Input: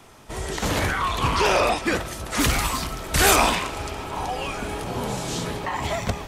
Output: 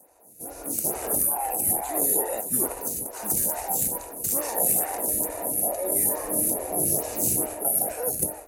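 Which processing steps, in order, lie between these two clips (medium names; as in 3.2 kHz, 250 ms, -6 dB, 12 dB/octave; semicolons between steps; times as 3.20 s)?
octave divider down 1 oct, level -2 dB; high-pass 600 Hz 6 dB/octave; careless resampling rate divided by 3×, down filtered, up zero stuff; high-order bell 3 kHz -13 dB 2.5 oct; reverse; compression 6:1, threshold -26 dBFS, peak gain reduction 14.5 dB; reverse; band-stop 4.4 kHz, Q 6.6; level rider gain up to 14 dB; speed mistake 45 rpm record played at 33 rpm; lamp-driven phase shifter 2.3 Hz; trim -3.5 dB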